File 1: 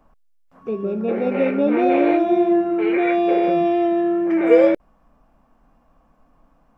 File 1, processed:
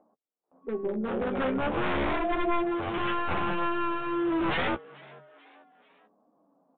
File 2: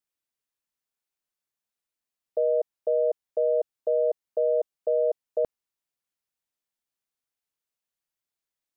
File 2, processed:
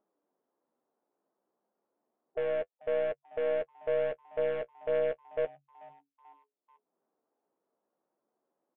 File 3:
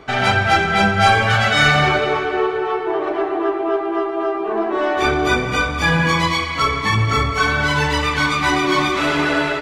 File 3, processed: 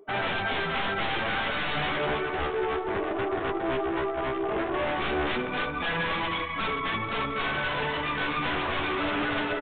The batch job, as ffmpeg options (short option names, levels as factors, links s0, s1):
-filter_complex "[0:a]afftdn=nr=23:nf=-29,highpass=150,acrossover=split=210|1100[s0][s1][s2];[s0]alimiter=level_in=1.58:limit=0.0631:level=0:latency=1:release=140,volume=0.631[s3];[s1]acompressor=mode=upward:threshold=0.0141:ratio=2.5[s4];[s3][s4][s2]amix=inputs=3:normalize=0,aeval=exprs='0.794*(cos(1*acos(clip(val(0)/0.794,-1,1)))-cos(1*PI/2))+0.0708*(cos(6*acos(clip(val(0)/0.794,-1,1)))-cos(6*PI/2))':c=same,asplit=2[s5][s6];[s6]adynamicsmooth=sensitivity=2.5:basefreq=1000,volume=1[s7];[s5][s7]amix=inputs=2:normalize=0,aeval=exprs='0.266*(abs(mod(val(0)/0.266+3,4)-2)-1)':c=same,flanger=delay=9.3:depth=6.5:regen=-24:speed=0.32:shape=triangular,asplit=4[s8][s9][s10][s11];[s9]adelay=437,afreqshift=140,volume=0.075[s12];[s10]adelay=874,afreqshift=280,volume=0.0367[s13];[s11]adelay=1311,afreqshift=420,volume=0.018[s14];[s8][s12][s13][s14]amix=inputs=4:normalize=0,aresample=8000,aresample=44100,volume=0.398"